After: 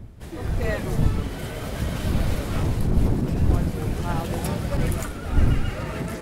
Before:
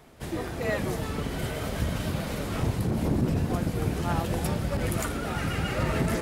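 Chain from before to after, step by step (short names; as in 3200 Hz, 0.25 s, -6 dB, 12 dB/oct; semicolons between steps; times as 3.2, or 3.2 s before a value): wind noise 100 Hz -23 dBFS; AGC gain up to 8 dB; gain -5.5 dB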